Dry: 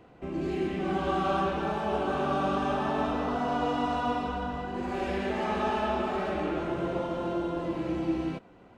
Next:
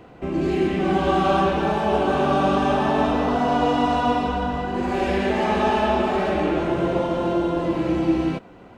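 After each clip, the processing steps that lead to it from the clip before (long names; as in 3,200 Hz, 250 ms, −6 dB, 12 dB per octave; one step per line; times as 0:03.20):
dynamic equaliser 1,300 Hz, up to −5 dB, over −46 dBFS, Q 4.5
level +9 dB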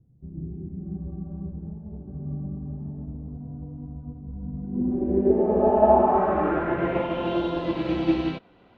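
low-pass filter sweep 130 Hz → 3,800 Hz, 0:04.28–0:07.47
expander for the loud parts 1.5 to 1, over −35 dBFS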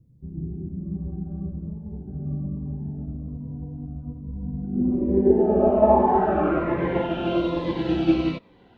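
phaser whose notches keep moving one way falling 1.2 Hz
level +3 dB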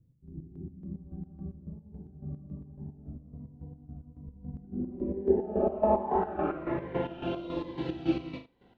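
flutter between parallel walls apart 6.6 metres, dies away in 0.32 s
square-wave tremolo 3.6 Hz, depth 65%, duty 45%
level −8 dB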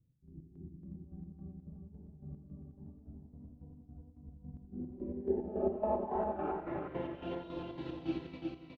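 single-tap delay 364 ms −4 dB
level −8.5 dB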